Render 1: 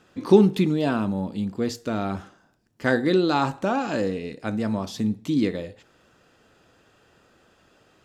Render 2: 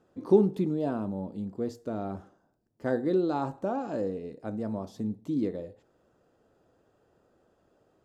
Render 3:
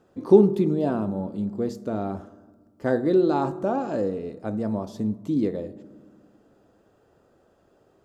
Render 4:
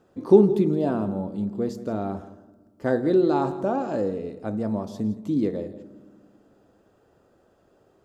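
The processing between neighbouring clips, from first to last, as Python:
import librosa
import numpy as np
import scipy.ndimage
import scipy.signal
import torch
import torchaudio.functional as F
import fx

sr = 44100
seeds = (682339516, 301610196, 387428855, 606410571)

y1 = fx.curve_eq(x, sr, hz=(220.0, 380.0, 640.0, 2500.0, 9100.0), db=(0, 3, 3, -13, -7))
y1 = y1 * librosa.db_to_amplitude(-8.0)
y2 = fx.rev_fdn(y1, sr, rt60_s=1.5, lf_ratio=1.6, hf_ratio=0.35, size_ms=15.0, drr_db=15.5)
y2 = y2 * librosa.db_to_amplitude(5.5)
y3 = y2 + 10.0 ** (-15.5 / 20.0) * np.pad(y2, (int(168 * sr / 1000.0), 0))[:len(y2)]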